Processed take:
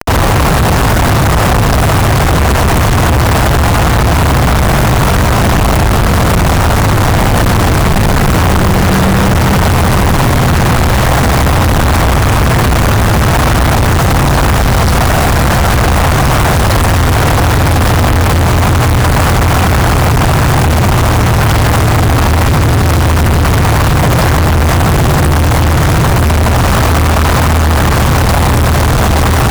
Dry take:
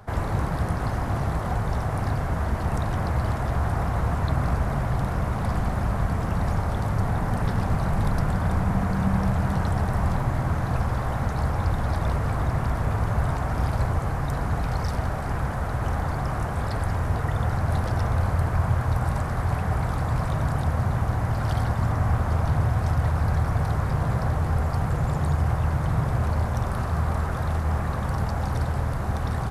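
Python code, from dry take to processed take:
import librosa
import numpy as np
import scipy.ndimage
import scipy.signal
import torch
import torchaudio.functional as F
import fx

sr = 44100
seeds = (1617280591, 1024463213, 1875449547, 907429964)

y = fx.quant_companded(x, sr, bits=2)
y = fx.fuzz(y, sr, gain_db=35.0, gate_db=-44.0)
y = y * 10.0 ** (6.0 / 20.0)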